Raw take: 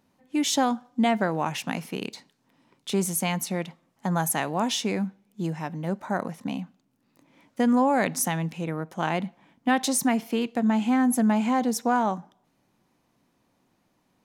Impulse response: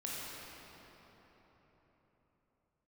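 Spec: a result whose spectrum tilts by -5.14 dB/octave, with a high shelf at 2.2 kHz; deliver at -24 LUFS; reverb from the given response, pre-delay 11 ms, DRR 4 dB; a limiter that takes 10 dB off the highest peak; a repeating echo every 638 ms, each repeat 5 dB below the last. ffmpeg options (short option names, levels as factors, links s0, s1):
-filter_complex "[0:a]highshelf=f=2200:g=-6,alimiter=limit=0.075:level=0:latency=1,aecho=1:1:638|1276|1914|2552|3190|3828|4466:0.562|0.315|0.176|0.0988|0.0553|0.031|0.0173,asplit=2[s0][s1];[1:a]atrim=start_sample=2205,adelay=11[s2];[s1][s2]afir=irnorm=-1:irlink=0,volume=0.501[s3];[s0][s3]amix=inputs=2:normalize=0,volume=1.88"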